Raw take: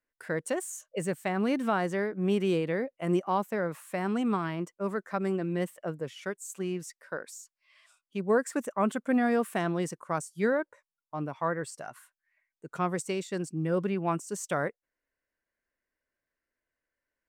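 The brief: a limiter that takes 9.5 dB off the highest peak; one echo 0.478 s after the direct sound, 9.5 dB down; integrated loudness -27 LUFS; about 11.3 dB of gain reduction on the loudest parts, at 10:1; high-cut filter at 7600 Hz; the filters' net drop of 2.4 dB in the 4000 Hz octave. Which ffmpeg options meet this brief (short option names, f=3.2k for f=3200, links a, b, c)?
-af "lowpass=7.6k,equalizer=f=4k:t=o:g=-3.5,acompressor=threshold=-33dB:ratio=10,alimiter=level_in=6.5dB:limit=-24dB:level=0:latency=1,volume=-6.5dB,aecho=1:1:478:0.335,volume=13.5dB"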